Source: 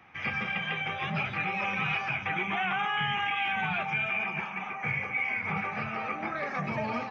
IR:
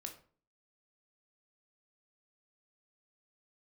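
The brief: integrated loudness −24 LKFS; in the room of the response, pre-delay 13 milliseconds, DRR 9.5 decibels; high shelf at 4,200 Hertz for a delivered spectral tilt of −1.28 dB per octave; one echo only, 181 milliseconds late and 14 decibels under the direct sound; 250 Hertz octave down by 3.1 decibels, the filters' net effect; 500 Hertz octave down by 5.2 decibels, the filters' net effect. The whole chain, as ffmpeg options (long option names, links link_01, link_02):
-filter_complex "[0:a]equalizer=frequency=250:width_type=o:gain=-3.5,equalizer=frequency=500:width_type=o:gain=-6.5,highshelf=frequency=4200:gain=5.5,aecho=1:1:181:0.2,asplit=2[link_01][link_02];[1:a]atrim=start_sample=2205,adelay=13[link_03];[link_02][link_03]afir=irnorm=-1:irlink=0,volume=-5.5dB[link_04];[link_01][link_04]amix=inputs=2:normalize=0,volume=5dB"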